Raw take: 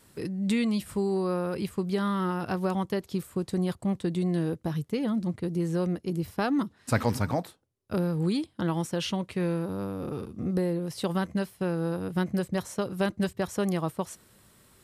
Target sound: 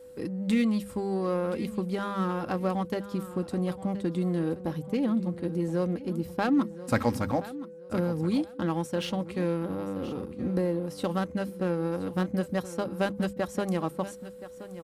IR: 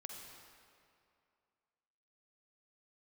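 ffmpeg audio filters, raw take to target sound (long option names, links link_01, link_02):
-filter_complex "[0:a]aeval=exprs='val(0)+0.00501*sin(2*PI*500*n/s)':channel_layout=same,aecho=1:1:3.7:0.38,asplit=2[link_01][link_02];[link_02]adynamicsmooth=sensitivity=8:basefreq=550,volume=-2dB[link_03];[link_01][link_03]amix=inputs=2:normalize=0,bandreject=frequency=50:width_type=h:width=6,bandreject=frequency=100:width_type=h:width=6,bandreject=frequency=150:width_type=h:width=6,bandreject=frequency=200:width_type=h:width=6,aecho=1:1:1024|2048|3072:0.178|0.0462|0.012,volume=-5dB"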